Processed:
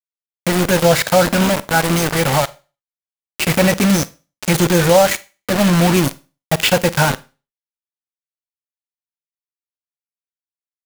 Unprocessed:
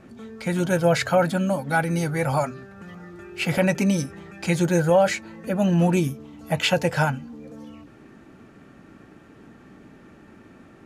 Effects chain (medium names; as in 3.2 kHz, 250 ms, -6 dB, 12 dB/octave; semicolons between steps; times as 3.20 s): bit crusher 4-bit; Schroeder reverb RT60 0.32 s, combs from 33 ms, DRR 17.5 dB; trim +6 dB